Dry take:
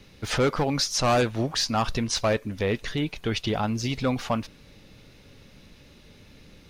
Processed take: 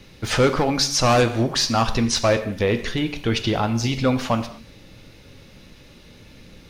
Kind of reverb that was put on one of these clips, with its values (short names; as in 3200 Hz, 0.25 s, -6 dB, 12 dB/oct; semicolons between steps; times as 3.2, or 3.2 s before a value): non-linear reverb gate 0.26 s falling, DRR 8.5 dB; gain +4.5 dB